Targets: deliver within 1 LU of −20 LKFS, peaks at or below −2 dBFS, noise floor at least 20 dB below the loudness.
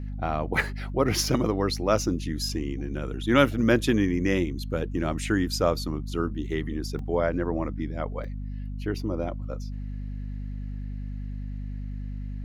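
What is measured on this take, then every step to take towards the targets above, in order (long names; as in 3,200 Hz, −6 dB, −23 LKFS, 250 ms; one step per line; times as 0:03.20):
number of dropouts 3; longest dropout 2.2 ms; mains hum 50 Hz; hum harmonics up to 250 Hz; level of the hum −31 dBFS; integrated loudness −28.0 LKFS; sample peak −6.5 dBFS; target loudness −20.0 LKFS
→ repair the gap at 0:02.49/0:06.99/0:08.24, 2.2 ms
hum removal 50 Hz, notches 5
level +8 dB
brickwall limiter −2 dBFS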